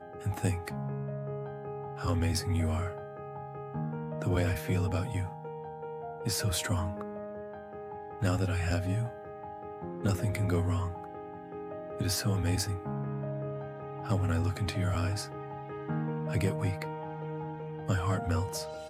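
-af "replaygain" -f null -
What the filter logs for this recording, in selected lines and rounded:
track_gain = +15.6 dB
track_peak = 0.076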